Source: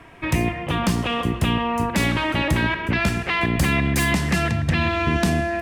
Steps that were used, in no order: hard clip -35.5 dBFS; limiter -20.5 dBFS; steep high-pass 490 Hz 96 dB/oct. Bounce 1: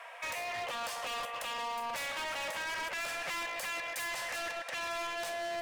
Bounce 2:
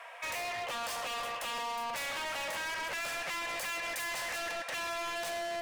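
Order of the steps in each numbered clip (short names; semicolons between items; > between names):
limiter > steep high-pass > hard clip; steep high-pass > limiter > hard clip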